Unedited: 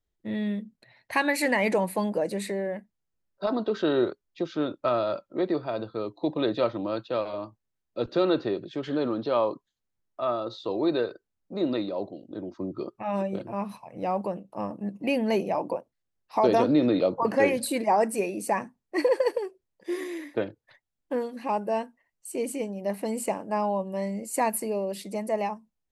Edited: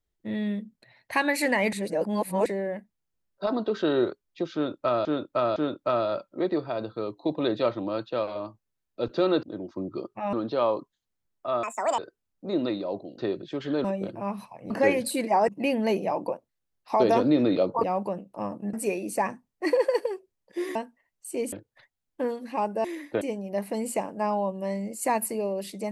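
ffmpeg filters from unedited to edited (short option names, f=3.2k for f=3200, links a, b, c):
-filter_complex "[0:a]asplit=19[a][b][c][d][e][f][g][h][i][j][k][l][m][n][o][p][q][r][s];[a]atrim=end=1.732[t];[b]atrim=start=1.728:end=2.462,asetpts=PTS-STARTPTS,areverse[u];[c]atrim=start=2.458:end=5.052[v];[d]atrim=start=4.538:end=5.052[w];[e]atrim=start=4.538:end=8.412[x];[f]atrim=start=12.258:end=13.162[y];[g]atrim=start=9.068:end=10.374[z];[h]atrim=start=10.37:end=11.06,asetpts=PTS-STARTPTS,asetrate=85995,aresample=44100[aa];[i]atrim=start=11.056:end=12.262[ab];[j]atrim=start=8.408:end=9.072[ac];[k]atrim=start=13.158:end=14.022[ad];[l]atrim=start=17.268:end=18.052[ae];[m]atrim=start=14.918:end=17.272[af];[n]atrim=start=14.018:end=14.922[ag];[o]atrim=start=18.048:end=20.072[ah];[p]atrim=start=21.758:end=22.532[ai];[q]atrim=start=20.438:end=21.762[aj];[r]atrim=start=20.068:end=20.442[ak];[s]atrim=start=22.528[al];[t][u]acrossfade=d=0.004:c1=hsin:c2=hsin[am];[am][v]acrossfade=d=0.004:c1=hsin:c2=hsin[an];[an][w]acrossfade=d=0.004:c1=hsin:c2=hsin[ao];[ao][x]acrossfade=d=0.004:c1=hsin:c2=hsin[ap];[ap][y]acrossfade=d=0.004:c1=hsin:c2=hsin[aq];[aq][z]acrossfade=d=0.004:c1=hsin:c2=hsin[ar];[ar][aa]acrossfade=d=0.004:c1=hsin:c2=hsin[as];[as][ab]acrossfade=d=0.004:c1=hsin:c2=hsin[at];[at][ac]acrossfade=d=0.004:c1=hsin:c2=hsin[au];[au][ad]acrossfade=d=0.004:c1=hsin:c2=hsin[av];[av][ae]acrossfade=d=0.004:c1=hsin:c2=hsin[aw];[aw][af]acrossfade=d=0.004:c1=hsin:c2=hsin[ax];[ax][ag]acrossfade=d=0.004:c1=hsin:c2=hsin[ay];[ay][ah]acrossfade=d=0.004:c1=hsin:c2=hsin[az];[az][ai]acrossfade=d=0.004:c1=hsin:c2=hsin[ba];[ba][aj]acrossfade=d=0.004:c1=hsin:c2=hsin[bb];[bb][ak]acrossfade=d=0.004:c1=hsin:c2=hsin[bc];[bc][al]acrossfade=d=0.004:c1=hsin:c2=hsin"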